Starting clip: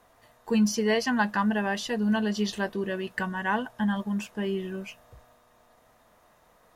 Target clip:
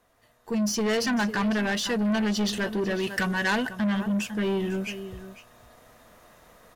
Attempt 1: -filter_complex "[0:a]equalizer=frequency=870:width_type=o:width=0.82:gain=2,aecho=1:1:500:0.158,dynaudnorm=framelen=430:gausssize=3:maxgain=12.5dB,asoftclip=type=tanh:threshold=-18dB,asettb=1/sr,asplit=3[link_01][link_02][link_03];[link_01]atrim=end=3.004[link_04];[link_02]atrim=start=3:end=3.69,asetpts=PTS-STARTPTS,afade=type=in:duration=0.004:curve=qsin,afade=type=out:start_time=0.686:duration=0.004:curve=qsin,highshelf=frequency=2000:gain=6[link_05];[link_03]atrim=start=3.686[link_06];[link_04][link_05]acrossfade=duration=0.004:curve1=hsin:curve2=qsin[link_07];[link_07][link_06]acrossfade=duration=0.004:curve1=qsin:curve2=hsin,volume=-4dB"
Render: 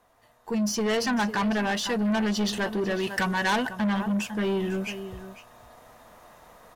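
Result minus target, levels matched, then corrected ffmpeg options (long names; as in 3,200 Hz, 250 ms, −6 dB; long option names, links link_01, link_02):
1,000 Hz band +3.5 dB
-filter_complex "[0:a]equalizer=frequency=870:width_type=o:width=0.82:gain=-5,aecho=1:1:500:0.158,dynaudnorm=framelen=430:gausssize=3:maxgain=12.5dB,asoftclip=type=tanh:threshold=-18dB,asettb=1/sr,asplit=3[link_01][link_02][link_03];[link_01]atrim=end=3.004[link_04];[link_02]atrim=start=3:end=3.69,asetpts=PTS-STARTPTS,afade=type=in:duration=0.004:curve=qsin,afade=type=out:start_time=0.686:duration=0.004:curve=qsin,highshelf=frequency=2000:gain=6[link_05];[link_03]atrim=start=3.686[link_06];[link_04][link_05]acrossfade=duration=0.004:curve1=hsin:curve2=qsin[link_07];[link_07][link_06]acrossfade=duration=0.004:curve1=qsin:curve2=hsin,volume=-4dB"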